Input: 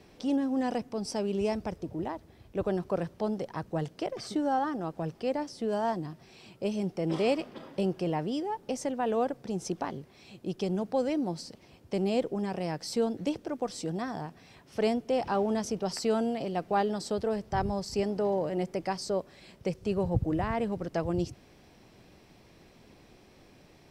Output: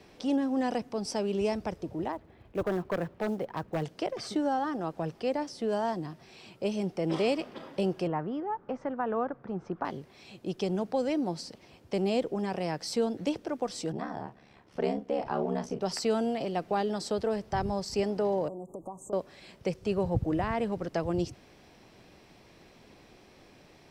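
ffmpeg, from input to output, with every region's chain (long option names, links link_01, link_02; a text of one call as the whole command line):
ffmpeg -i in.wav -filter_complex "[0:a]asettb=1/sr,asplit=3[link_01][link_02][link_03];[link_01]atrim=end=2.124[link_04];[link_02]atrim=start=2.12:end=3.83,asetpts=PTS-STARTPTS,afade=type=in:duration=0.004:curve=qsin,afade=type=out:start_time=1.706:duration=0.004:curve=qsin,lowpass=2600,aeval=exprs='0.0668*(abs(mod(val(0)/0.0668+3,4)-2)-1)':channel_layout=same,acrusher=bits=8:mode=log:mix=0:aa=0.000001[link_05];[link_03]atrim=start=3.826[link_06];[link_04][link_05]acrossfade=duration=0.004:curve1=hsin:curve2=qsin[link_07];[link_07][link_06]acrossfade=duration=0.004:curve1=qsin:curve2=hsin,asettb=1/sr,asplit=3[link_08][link_09][link_10];[link_08]atrim=end=8.074[link_11];[link_09]atrim=start=8.07:end=9.85,asetpts=PTS-STARTPTS,afade=type=in:duration=0.004:curve=qsin,afade=type=out:start_time=1.776:duration=0.004:curve=qsin,lowpass=frequency=1300:width_type=q:width=2.5,equalizer=frequency=660:width=0.48:gain=-5[link_12];[link_10]atrim=start=9.846[link_13];[link_11][link_12]acrossfade=duration=0.004:curve1=hsin:curve2=qsin[link_14];[link_14][link_13]acrossfade=duration=0.004:curve1=qsin:curve2=hsin,asettb=1/sr,asplit=3[link_15][link_16][link_17];[link_15]atrim=end=13.924[link_18];[link_16]atrim=start=13.92:end=15.81,asetpts=PTS-STARTPTS,afade=type=in:duration=0.004:curve=qsin,afade=type=out:start_time=1.886:duration=0.004:curve=qsin,highshelf=frequency=3000:gain=-11.5,aeval=exprs='val(0)*sin(2*PI*35*n/s)':channel_layout=same,asplit=2[link_19][link_20];[link_20]adelay=38,volume=-10dB[link_21];[link_19][link_21]amix=inputs=2:normalize=0,atrim=end_sample=83349[link_22];[link_17]atrim=start=15.806[link_23];[link_18][link_22]acrossfade=duration=0.004:curve1=hsin:curve2=qsin[link_24];[link_24][link_23]acrossfade=duration=0.004:curve1=qsin:curve2=hsin,asettb=1/sr,asplit=3[link_25][link_26][link_27];[link_25]atrim=end=18.484[link_28];[link_26]atrim=start=18.48:end=19.13,asetpts=PTS-STARTPTS,afade=type=in:duration=0.004:curve=qsin,afade=type=out:start_time=0.646:duration=0.004:curve=qsin,acompressor=threshold=-37dB:ratio=10:attack=3.2:release=140:knee=1:detection=peak,asuperstop=centerf=2900:order=20:qfactor=0.51[link_29];[link_27]atrim=start=19.126[link_30];[link_28][link_29]acrossfade=duration=0.004:curve1=hsin:curve2=qsin[link_31];[link_31][link_30]acrossfade=duration=0.004:curve1=qsin:curve2=hsin,highshelf=frequency=8100:gain=-5.5,acrossover=split=400|3000[link_32][link_33][link_34];[link_33]acompressor=threshold=-30dB:ratio=6[link_35];[link_32][link_35][link_34]amix=inputs=3:normalize=0,lowshelf=frequency=320:gain=-5,volume=3dB" out.wav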